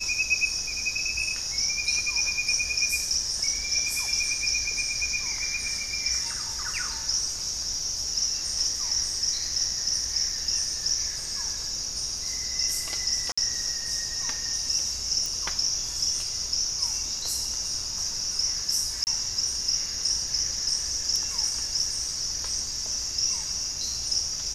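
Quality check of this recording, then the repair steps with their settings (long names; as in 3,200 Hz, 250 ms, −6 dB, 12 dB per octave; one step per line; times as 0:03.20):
0:13.32–0:13.38: drop-out 55 ms
0:15.26: click
0:19.04–0:19.07: drop-out 29 ms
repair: click removal
repair the gap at 0:13.32, 55 ms
repair the gap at 0:19.04, 29 ms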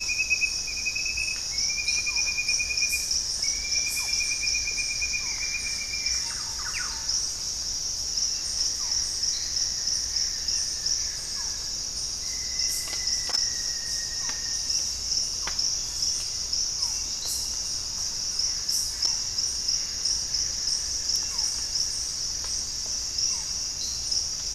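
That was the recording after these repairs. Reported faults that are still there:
none of them is left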